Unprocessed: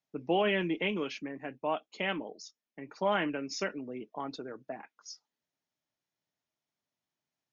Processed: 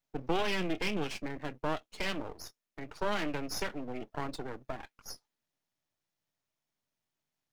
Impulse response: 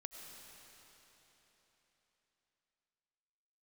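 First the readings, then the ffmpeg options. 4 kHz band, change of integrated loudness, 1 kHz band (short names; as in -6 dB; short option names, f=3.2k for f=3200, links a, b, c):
0.0 dB, -2.5 dB, -2.5 dB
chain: -filter_complex "[0:a]acrossover=split=160|3000[a][b][c];[b]acompressor=threshold=-34dB:ratio=2[d];[a][d][c]amix=inputs=3:normalize=0,acrossover=split=120[e][f];[f]aeval=exprs='max(val(0),0)':c=same[g];[e][g]amix=inputs=2:normalize=0,volume=5.5dB"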